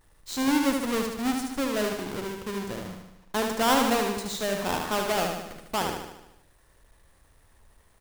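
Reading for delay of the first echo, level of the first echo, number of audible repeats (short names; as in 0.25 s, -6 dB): 75 ms, -4.5 dB, 7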